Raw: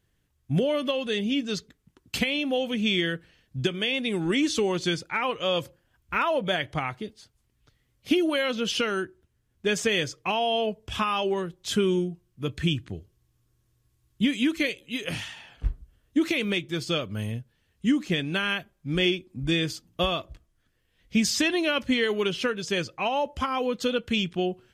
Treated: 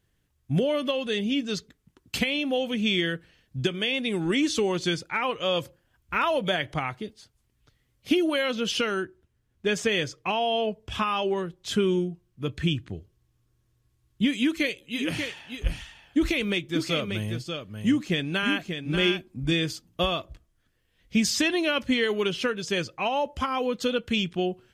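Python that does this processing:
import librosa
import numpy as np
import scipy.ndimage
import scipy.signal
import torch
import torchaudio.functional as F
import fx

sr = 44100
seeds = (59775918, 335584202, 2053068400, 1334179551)

y = fx.band_squash(x, sr, depth_pct=70, at=(6.23, 6.74))
y = fx.high_shelf(y, sr, hz=6200.0, db=-5.5, at=(8.94, 14.26))
y = fx.echo_single(y, sr, ms=587, db=-6.5, at=(14.97, 19.51), fade=0.02)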